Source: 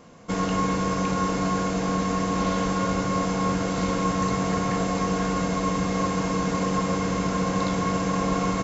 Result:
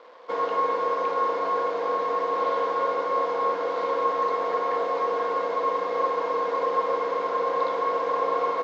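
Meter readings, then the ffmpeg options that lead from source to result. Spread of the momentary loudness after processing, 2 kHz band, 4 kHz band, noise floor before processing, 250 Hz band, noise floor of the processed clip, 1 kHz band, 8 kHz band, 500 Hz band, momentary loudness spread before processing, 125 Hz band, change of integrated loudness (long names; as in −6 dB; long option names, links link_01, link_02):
2 LU, −3.5 dB, −8.0 dB, −27 dBFS, −18.0 dB, −29 dBFS, +3.0 dB, can't be measured, +3.5 dB, 1 LU, below −25 dB, −0.5 dB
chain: -af "acrusher=bits=7:mix=0:aa=0.000001,highpass=frequency=390:width=0.5412,highpass=frequency=390:width=1.3066,equalizer=frequency=500:width_type=q:width=4:gain=10,equalizer=frequency=1000:width_type=q:width=4:gain=9,equalizer=frequency=2700:width_type=q:width=4:gain=-6,lowpass=frequency=3900:width=0.5412,lowpass=frequency=3900:width=1.3066,volume=-3dB"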